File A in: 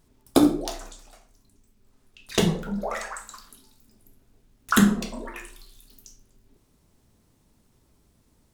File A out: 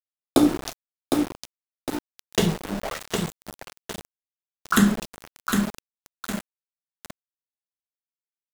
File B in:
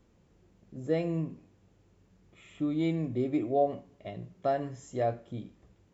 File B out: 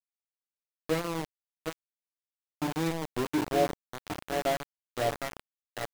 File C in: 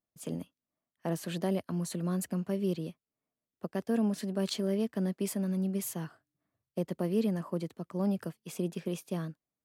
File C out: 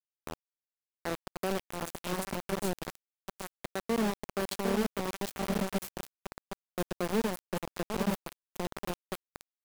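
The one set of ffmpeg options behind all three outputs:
ffmpeg -i in.wav -af "aecho=1:1:758|1516|2274|3032|3790|4548:0.562|0.253|0.114|0.0512|0.0231|0.0104,aeval=exprs='val(0)*gte(abs(val(0)),0.0447)':channel_layout=same" out.wav

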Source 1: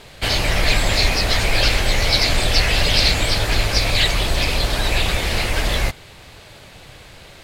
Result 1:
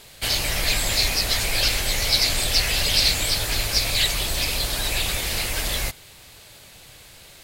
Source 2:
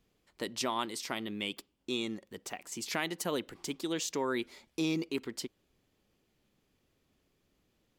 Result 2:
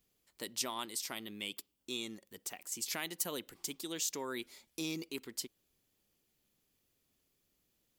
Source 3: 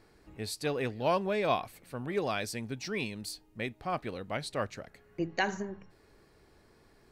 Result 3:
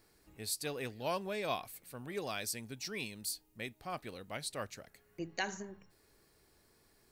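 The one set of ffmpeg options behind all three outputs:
ffmpeg -i in.wav -af "aemphasis=mode=production:type=75kf,volume=-8.5dB" out.wav

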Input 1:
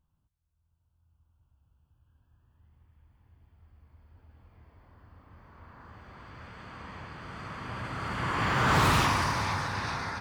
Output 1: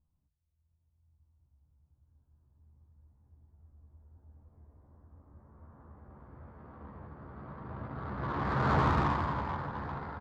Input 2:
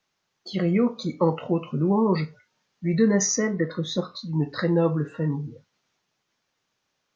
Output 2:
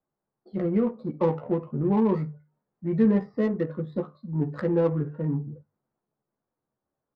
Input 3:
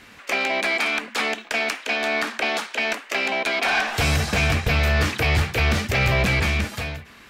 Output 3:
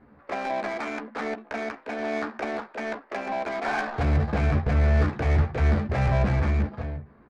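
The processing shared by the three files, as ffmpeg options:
ffmpeg -i in.wav -filter_complex "[0:a]bandreject=frequency=50:width_type=h:width=6,bandreject=frequency=100:width_type=h:width=6,bandreject=frequency=150:width_type=h:width=6,aresample=11025,aresample=44100,equalizer=frequency=3000:width=1.2:gain=-13.5,asplit=2[link_01][link_02];[link_02]adelay=14,volume=-5dB[link_03];[link_01][link_03]amix=inputs=2:normalize=0,adynamicsmooth=sensitivity=1.5:basefreq=1000,volume=-2.5dB" out.wav

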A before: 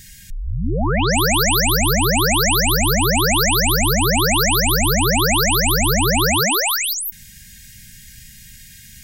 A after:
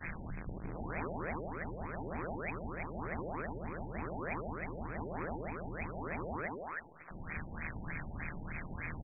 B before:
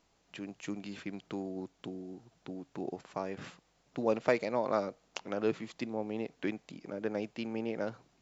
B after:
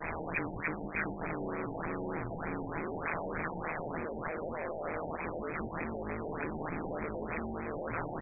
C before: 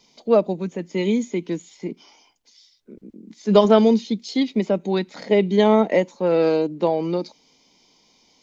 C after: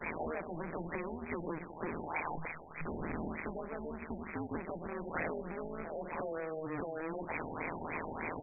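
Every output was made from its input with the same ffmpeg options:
ffmpeg -i in.wav -af "aeval=exprs='val(0)+0.5*0.0531*sgn(val(0))':channel_layout=same,equalizer=frequency=440:width=1.2:gain=4.5,acompressor=threshold=-21dB:ratio=6,alimiter=limit=-23dB:level=0:latency=1:release=122,asoftclip=type=tanh:threshold=-37.5dB,equalizer=frequency=2600:width=0.53:gain=7,bandreject=frequency=50:width_type=h:width=6,bandreject=frequency=100:width_type=h:width=6,bandreject=frequency=150:width_type=h:width=6,bandreject=frequency=200:width_type=h:width=6,bandreject=frequency=250:width_type=h:width=6,agate=range=-33dB:threshold=-31dB:ratio=3:detection=peak,aecho=1:1:167|334|501|668|835:0.2|0.0978|0.0479|0.0235|0.0115,tremolo=f=160:d=0.947,afftfilt=real='re*lt(b*sr/1024,900*pow(2600/900,0.5+0.5*sin(2*PI*3.3*pts/sr)))':imag='im*lt(b*sr/1024,900*pow(2600/900,0.5+0.5*sin(2*PI*3.3*pts/sr)))':win_size=1024:overlap=0.75,volume=9dB" out.wav

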